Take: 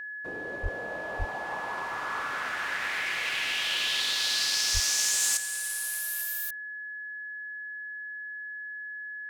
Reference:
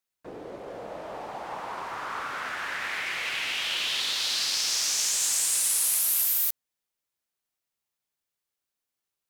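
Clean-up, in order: notch 1700 Hz, Q 30; 0.62–0.74 HPF 140 Hz 24 dB/oct; 1.18–1.3 HPF 140 Hz 24 dB/oct; 4.73–4.85 HPF 140 Hz 24 dB/oct; gain 0 dB, from 5.37 s +9 dB

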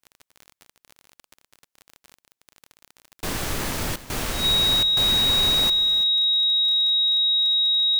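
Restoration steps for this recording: de-click; notch 3800 Hz, Q 30; inverse comb 0.337 s -15 dB

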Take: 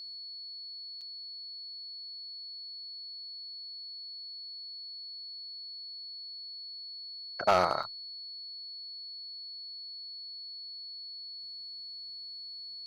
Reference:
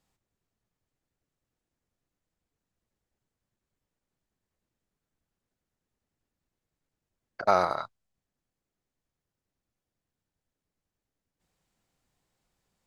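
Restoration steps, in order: clip repair -16.5 dBFS; notch 4400 Hz, Q 30; interpolate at 1.01/7.83, 5.4 ms

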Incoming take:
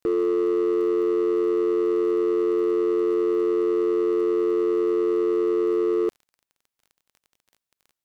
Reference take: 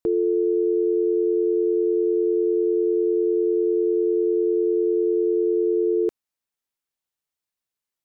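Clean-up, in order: clip repair -18 dBFS; de-click

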